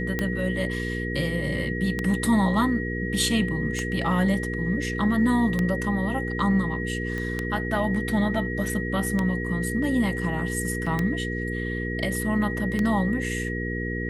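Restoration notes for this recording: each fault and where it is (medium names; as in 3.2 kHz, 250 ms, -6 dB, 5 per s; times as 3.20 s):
hum 60 Hz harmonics 8 -30 dBFS
tick 33 1/3 rpm -12 dBFS
whine 1.9 kHz -32 dBFS
7.18 s: pop -20 dBFS
10.86 s: dropout 4.7 ms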